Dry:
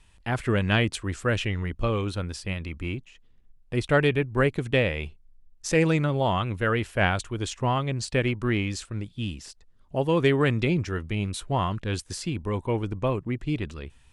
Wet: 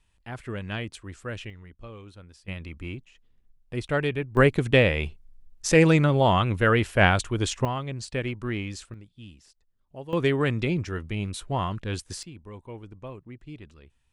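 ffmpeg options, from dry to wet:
ffmpeg -i in.wav -af "asetnsamples=nb_out_samples=441:pad=0,asendcmd='1.5 volume volume -17dB;2.48 volume volume -4.5dB;4.37 volume volume 4dB;7.65 volume volume -5dB;8.94 volume volume -14dB;10.13 volume volume -2dB;12.23 volume volume -14dB',volume=-10dB" out.wav

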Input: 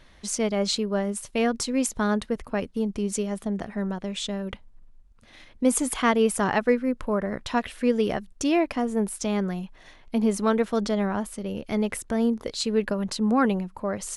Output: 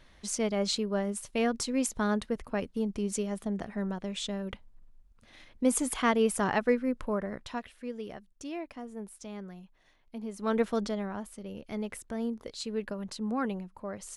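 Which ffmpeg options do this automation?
ffmpeg -i in.wav -af "volume=8.5dB,afade=type=out:start_time=7.02:duration=0.72:silence=0.266073,afade=type=in:start_time=10.37:duration=0.24:silence=0.223872,afade=type=out:start_time=10.61:duration=0.42:silence=0.446684" out.wav

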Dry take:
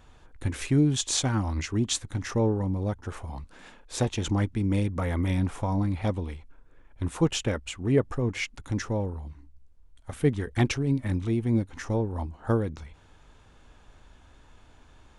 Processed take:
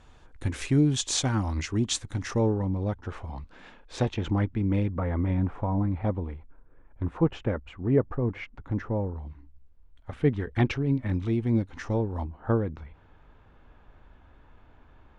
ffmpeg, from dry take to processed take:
ffmpeg -i in.wav -af "asetnsamples=nb_out_samples=441:pad=0,asendcmd='2.53 lowpass f 4100;4.14 lowpass f 2500;4.91 lowpass f 1500;9.16 lowpass f 3000;11.13 lowpass f 4800;12.24 lowpass f 2100',lowpass=8900" out.wav

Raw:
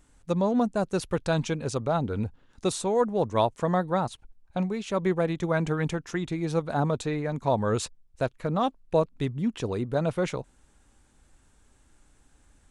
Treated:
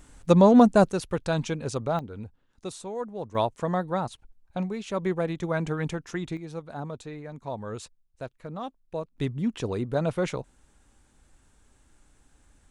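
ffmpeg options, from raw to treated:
ffmpeg -i in.wav -af "asetnsamples=nb_out_samples=441:pad=0,asendcmd='0.92 volume volume -1dB;1.99 volume volume -9.5dB;3.35 volume volume -2dB;6.37 volume volume -10dB;9.18 volume volume 0dB',volume=8.5dB" out.wav

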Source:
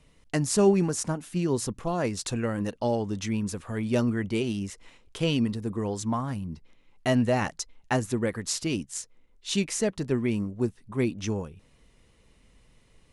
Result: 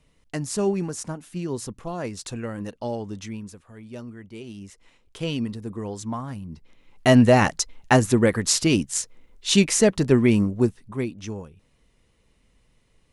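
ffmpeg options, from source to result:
ffmpeg -i in.wav -af "volume=19dB,afade=type=out:start_time=3.14:duration=0.49:silence=0.316228,afade=type=in:start_time=4.31:duration=0.98:silence=0.281838,afade=type=in:start_time=6.48:duration=0.69:silence=0.281838,afade=type=out:start_time=10.45:duration=0.63:silence=0.237137" out.wav

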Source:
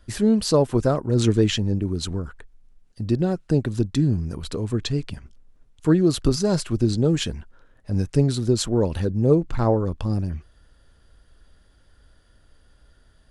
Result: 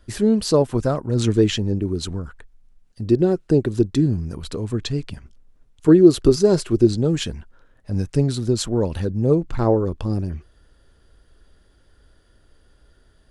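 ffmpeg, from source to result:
ffmpeg -i in.wav -af "asetnsamples=nb_out_samples=441:pad=0,asendcmd='0.62 equalizer g -2;1.35 equalizer g 5;2.09 equalizer g -3;3.01 equalizer g 9;4.06 equalizer g 0.5;5.88 equalizer g 10.5;6.87 equalizer g 0;9.59 equalizer g 6',equalizer=frequency=380:width_type=o:width=0.68:gain=4" out.wav

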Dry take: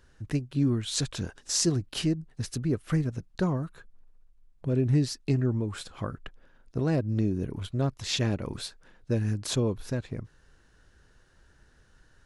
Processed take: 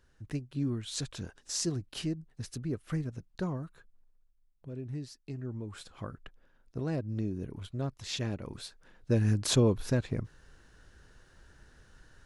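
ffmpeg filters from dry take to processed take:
ffmpeg -i in.wav -af "volume=10.5dB,afade=type=out:start_time=3.62:duration=1.1:silence=0.398107,afade=type=in:start_time=5.33:duration=0.55:silence=0.398107,afade=type=in:start_time=8.63:duration=0.75:silence=0.334965" out.wav

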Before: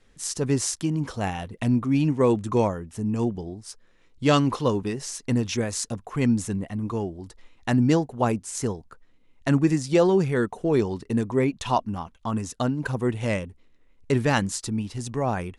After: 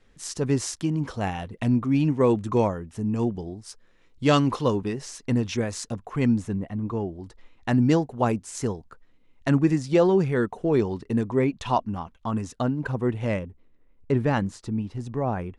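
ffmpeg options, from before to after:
ffmpeg -i in.wav -af "asetnsamples=nb_out_samples=441:pad=0,asendcmd='3.35 lowpass f 8200;4.75 lowpass f 3900;6.38 lowpass f 1600;7.09 lowpass f 3200;7.73 lowpass f 5600;9.5 lowpass f 3400;12.61 lowpass f 1900;13.39 lowpass f 1100',lowpass=frequency=4700:poles=1" out.wav

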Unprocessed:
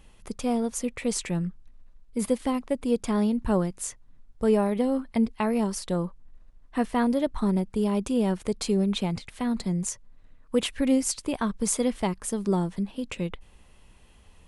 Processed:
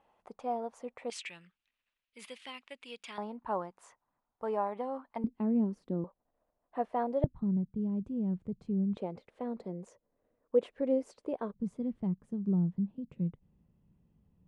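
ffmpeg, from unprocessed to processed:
ffmpeg -i in.wav -af "asetnsamples=nb_out_samples=441:pad=0,asendcmd='1.1 bandpass f 2700;3.18 bandpass f 910;5.24 bandpass f 260;6.04 bandpass f 650;7.24 bandpass f 140;8.97 bandpass f 500;11.54 bandpass f 160',bandpass=frequency=780:width_type=q:width=2.4:csg=0" out.wav

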